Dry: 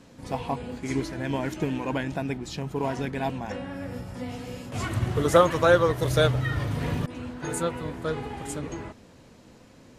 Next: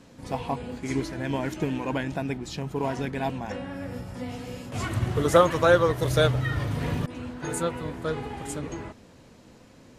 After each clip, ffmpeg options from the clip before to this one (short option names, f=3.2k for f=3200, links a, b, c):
-af anull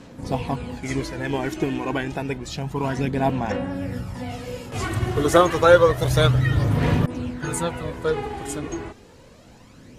-af "aphaser=in_gain=1:out_gain=1:delay=2.8:decay=0.44:speed=0.29:type=sinusoidal,volume=3.5dB"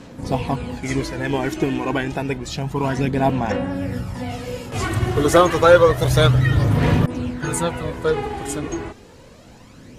-af "asoftclip=type=tanh:threshold=-5dB,volume=3.5dB"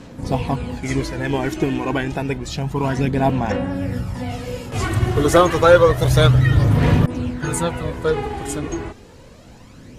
-af "lowshelf=f=120:g=4.5"